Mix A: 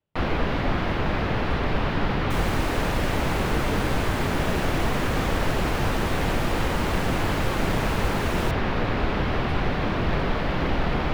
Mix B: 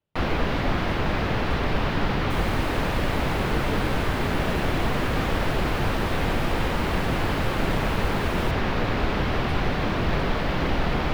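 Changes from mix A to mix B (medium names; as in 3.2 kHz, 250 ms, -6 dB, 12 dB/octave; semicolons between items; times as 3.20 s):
second sound -10.0 dB; master: add treble shelf 5.9 kHz +7.5 dB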